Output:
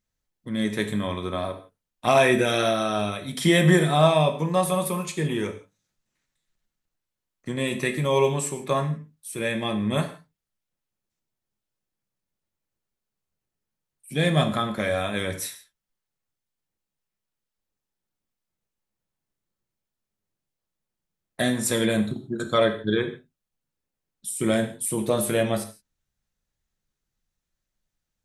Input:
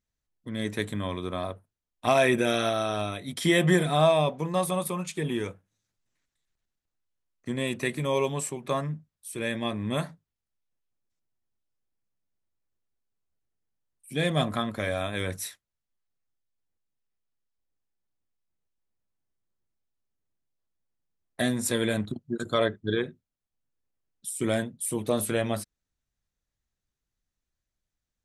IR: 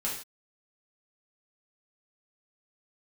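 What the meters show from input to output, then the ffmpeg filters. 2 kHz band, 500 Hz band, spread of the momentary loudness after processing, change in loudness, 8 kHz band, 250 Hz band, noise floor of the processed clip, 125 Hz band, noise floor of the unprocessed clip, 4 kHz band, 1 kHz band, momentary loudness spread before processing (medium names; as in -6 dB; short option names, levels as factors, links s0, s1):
+3.5 dB, +3.5 dB, 14 LU, +4.0 dB, +3.5 dB, +4.0 dB, under -85 dBFS, +4.5 dB, under -85 dBFS, +3.5 dB, +4.0 dB, 14 LU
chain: -filter_complex "[0:a]asplit=2[s0][s1];[1:a]atrim=start_sample=2205[s2];[s1][s2]afir=irnorm=-1:irlink=0,volume=0.447[s3];[s0][s3]amix=inputs=2:normalize=0"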